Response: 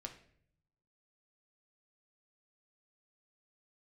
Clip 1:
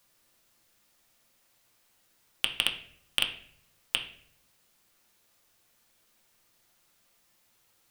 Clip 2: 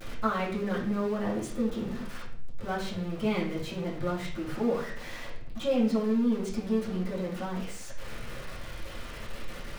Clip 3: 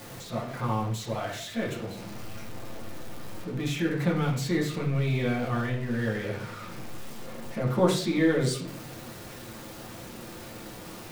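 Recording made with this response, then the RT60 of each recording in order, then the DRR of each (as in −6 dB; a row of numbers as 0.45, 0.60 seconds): 1; 0.60, 0.60, 0.60 seconds; 3.0, −9.0, −4.0 decibels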